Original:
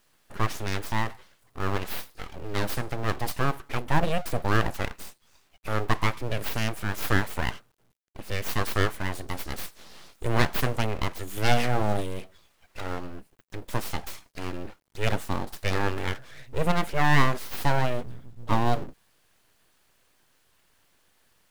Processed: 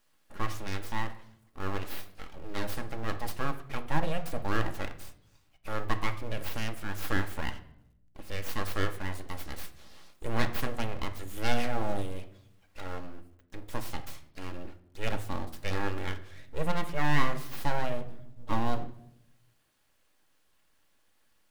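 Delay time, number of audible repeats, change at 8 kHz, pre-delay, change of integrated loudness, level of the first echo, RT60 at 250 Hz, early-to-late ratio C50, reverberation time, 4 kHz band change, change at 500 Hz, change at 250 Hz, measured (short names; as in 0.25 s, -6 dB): none, none, -7.0 dB, 4 ms, -6.5 dB, none, 1.2 s, 14.0 dB, 0.75 s, -6.5 dB, -6.0 dB, -5.0 dB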